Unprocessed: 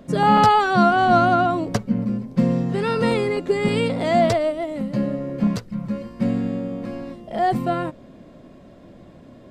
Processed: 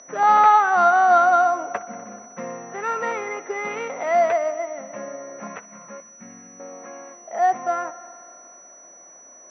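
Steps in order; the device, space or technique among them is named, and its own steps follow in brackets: 6.00–6.60 s: FFT filter 180 Hz 0 dB, 550 Hz -17 dB, 1.9 kHz -9 dB; multi-head delay 62 ms, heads first and third, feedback 69%, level -20.5 dB; toy sound module (decimation joined by straight lines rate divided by 6×; class-D stage that switches slowly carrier 5.9 kHz; cabinet simulation 700–3700 Hz, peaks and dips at 750 Hz +5 dB, 1.3 kHz +5 dB, 2 kHz +5 dB, 3.1 kHz -5 dB)

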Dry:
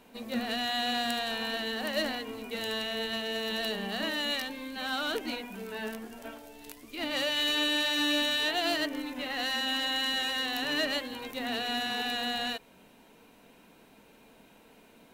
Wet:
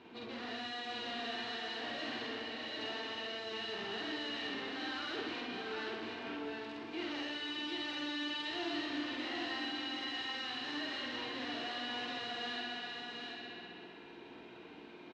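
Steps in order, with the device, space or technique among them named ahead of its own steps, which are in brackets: 2.36–2.79 s: amplifier tone stack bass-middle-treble 5-5-5; analogue delay pedal into a guitar amplifier (bucket-brigade echo 65 ms, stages 2048, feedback 81%, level -11 dB; valve stage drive 44 dB, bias 0.45; cabinet simulation 100–4400 Hz, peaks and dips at 100 Hz +3 dB, 200 Hz -7 dB, 350 Hz +10 dB, 560 Hz -8 dB); doubling 48 ms -2 dB; delay 743 ms -4 dB; trim +2 dB

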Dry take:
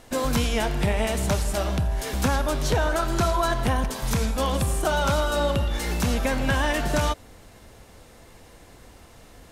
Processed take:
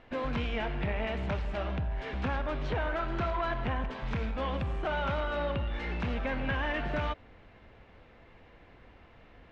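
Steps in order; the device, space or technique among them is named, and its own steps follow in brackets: overdriven synthesiser ladder filter (saturation -18 dBFS, distortion -16 dB; four-pole ladder low-pass 3.2 kHz, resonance 30%)

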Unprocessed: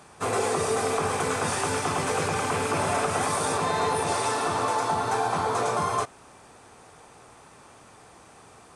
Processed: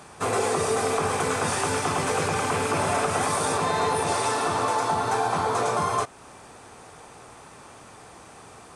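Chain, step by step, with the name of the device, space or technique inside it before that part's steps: parallel compression (in parallel at -3.5 dB: compression, threshold -36 dBFS, peak gain reduction 13.5 dB)

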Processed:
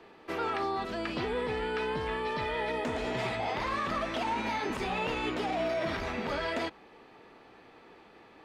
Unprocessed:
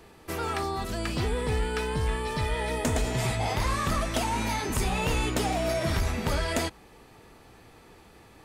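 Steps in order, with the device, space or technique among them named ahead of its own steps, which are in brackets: DJ mixer with the lows and highs turned down (three-band isolator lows -16 dB, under 200 Hz, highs -22 dB, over 4.3 kHz; peak limiter -23 dBFS, peak gain reduction 7.5 dB)

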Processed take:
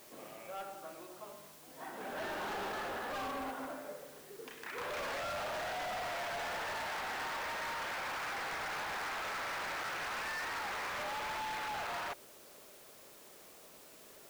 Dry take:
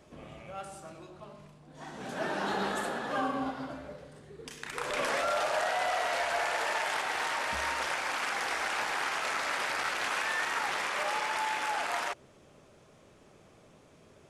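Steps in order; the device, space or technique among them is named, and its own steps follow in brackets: aircraft radio (band-pass 330–2500 Hz; hard clipper -37.5 dBFS, distortion -6 dB; white noise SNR 17 dB)

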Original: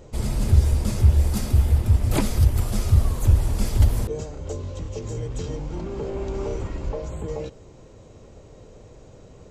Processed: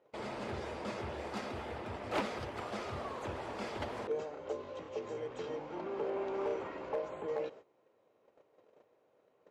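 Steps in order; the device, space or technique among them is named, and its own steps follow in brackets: walkie-talkie (band-pass 480–2400 Hz; hard clipper -27 dBFS, distortion -17 dB; gate -50 dBFS, range -16 dB); trim -1 dB

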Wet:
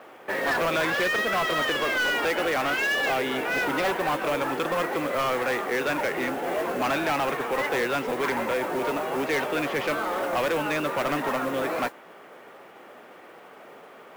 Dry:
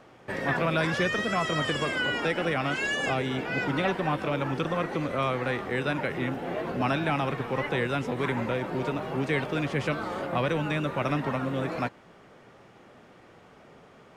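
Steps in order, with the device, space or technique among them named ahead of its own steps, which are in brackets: carbon microphone (band-pass 370–3300 Hz; saturation -28.5 dBFS, distortion -11 dB; modulation noise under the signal 20 dB); trim +8 dB

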